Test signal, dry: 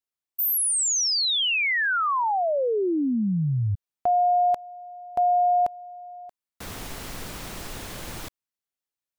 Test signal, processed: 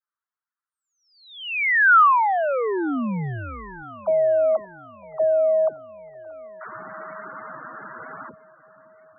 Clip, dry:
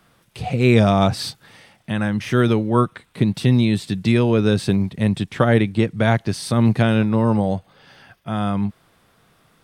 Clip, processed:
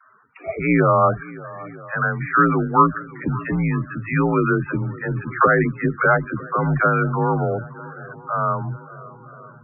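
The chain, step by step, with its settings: peaking EQ 1.4 kHz +12.5 dB 0.94 oct; mistuned SSB -78 Hz 220–2500 Hz; phase dispersion lows, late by 69 ms, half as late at 420 Hz; on a send: shuffle delay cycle 954 ms, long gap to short 1.5:1, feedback 52%, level -19.5 dB; on the sum: loudest bins only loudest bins 32; trim -1 dB

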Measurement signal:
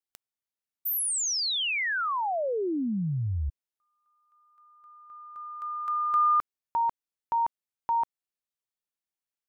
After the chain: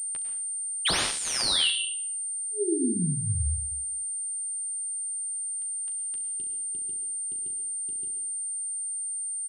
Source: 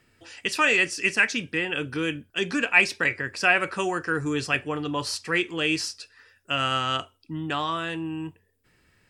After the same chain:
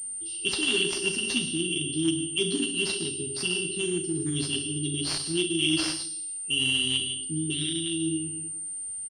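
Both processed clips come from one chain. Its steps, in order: tilt EQ +1.5 dB/octave; early reflections 12 ms -4.5 dB, 39 ms -7 dB, 67 ms -9 dB; FFT band-reject 420–2700 Hz; plate-style reverb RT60 0.64 s, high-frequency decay 0.85×, pre-delay 90 ms, DRR 5.5 dB; class-D stage that switches slowly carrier 8.9 kHz; trim +1.5 dB

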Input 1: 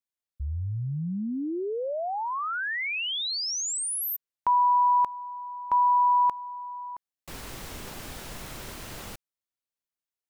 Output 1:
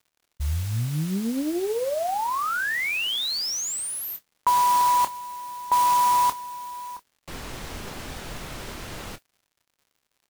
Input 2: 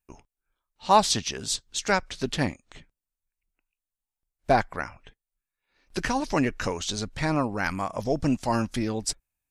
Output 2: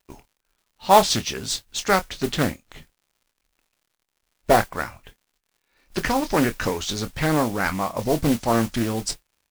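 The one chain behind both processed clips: treble shelf 8.3 kHz -7.5 dB; modulation noise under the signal 14 dB; crackle 130 per s -56 dBFS; doubling 26 ms -11.5 dB; loudspeaker Doppler distortion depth 0.41 ms; trim +4 dB

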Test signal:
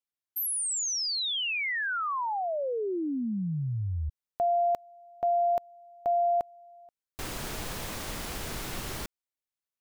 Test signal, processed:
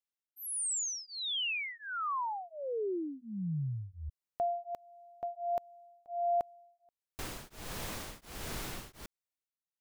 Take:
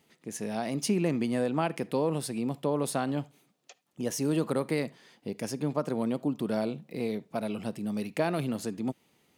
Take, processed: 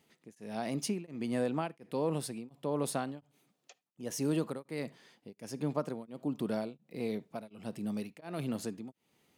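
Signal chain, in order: tremolo of two beating tones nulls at 1.4 Hz; trim -3 dB

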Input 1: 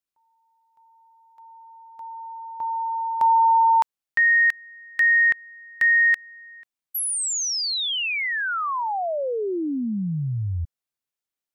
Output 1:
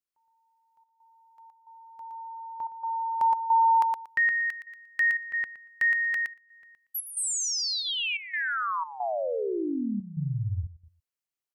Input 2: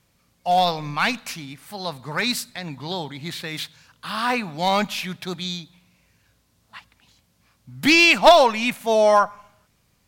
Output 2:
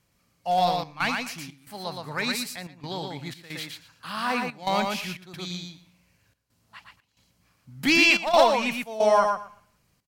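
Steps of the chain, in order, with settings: on a send: feedback delay 117 ms, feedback 16%, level -4 dB; on the sum: trance gate "xxxxx.xxx.x" 90 bpm -12 dB; band-stop 3.6 kHz, Q 14; trim -5 dB

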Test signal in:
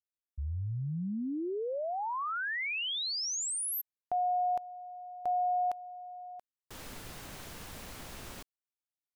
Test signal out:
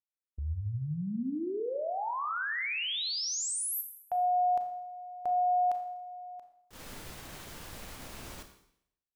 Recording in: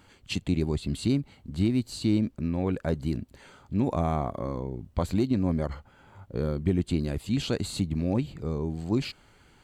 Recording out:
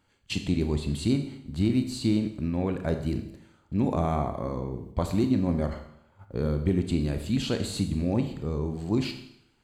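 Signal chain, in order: gate -46 dBFS, range -12 dB; Schroeder reverb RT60 0.73 s, combs from 27 ms, DRR 6.5 dB

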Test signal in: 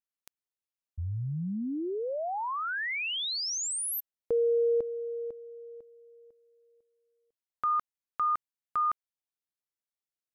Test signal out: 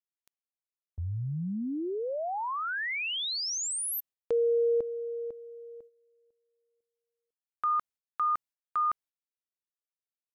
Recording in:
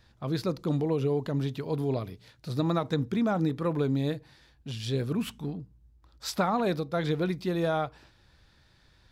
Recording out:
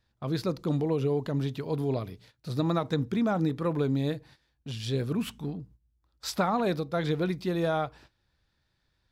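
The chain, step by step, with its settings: gate -52 dBFS, range -13 dB

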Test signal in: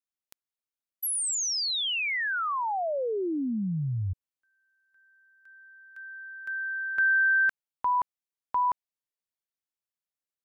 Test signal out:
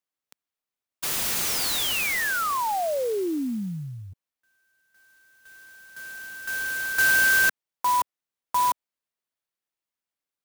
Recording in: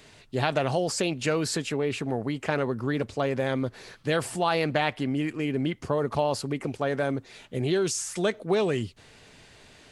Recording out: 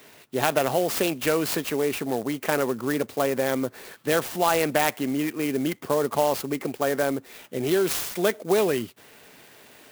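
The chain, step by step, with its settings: high-pass 220 Hz 12 dB/octave; sampling jitter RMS 0.045 ms; trim +3.5 dB

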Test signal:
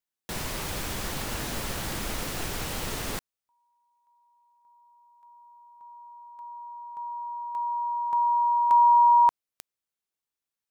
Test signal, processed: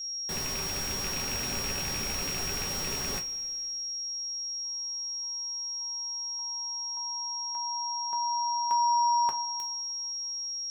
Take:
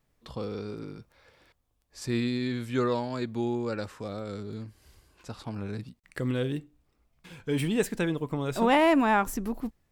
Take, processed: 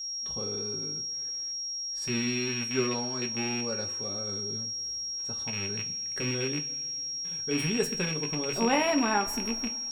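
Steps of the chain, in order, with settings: rattle on loud lows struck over -33 dBFS, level -21 dBFS; whistle 5.6 kHz -34 dBFS; two-slope reverb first 0.21 s, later 2.3 s, from -21 dB, DRR 3 dB; trim -5 dB

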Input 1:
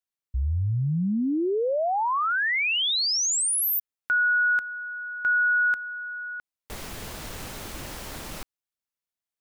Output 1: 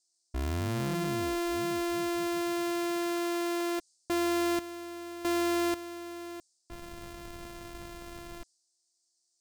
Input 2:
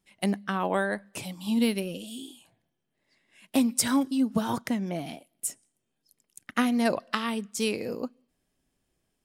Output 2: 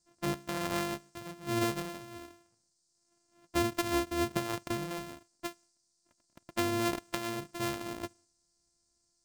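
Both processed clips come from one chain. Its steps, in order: sorted samples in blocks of 128 samples; band noise 4.5–8.9 kHz -62 dBFS; tape noise reduction on one side only decoder only; trim -6.5 dB

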